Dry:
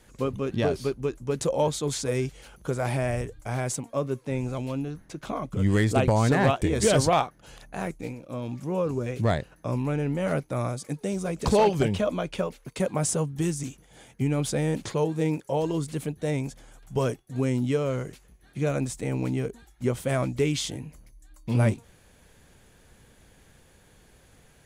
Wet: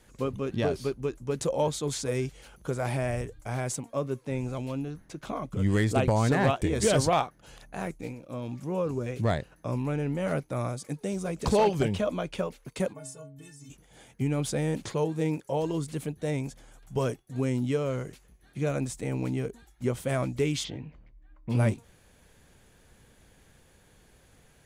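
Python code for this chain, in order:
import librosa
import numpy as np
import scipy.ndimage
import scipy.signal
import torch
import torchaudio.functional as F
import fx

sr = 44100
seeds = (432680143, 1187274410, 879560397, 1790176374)

y = fx.stiff_resonator(x, sr, f0_hz=130.0, decay_s=0.51, stiffness=0.03, at=(12.92, 13.69), fade=0.02)
y = fx.lowpass(y, sr, hz=fx.line((20.63, 4600.0), (21.49, 2100.0)), slope=24, at=(20.63, 21.49), fade=0.02)
y = y * librosa.db_to_amplitude(-2.5)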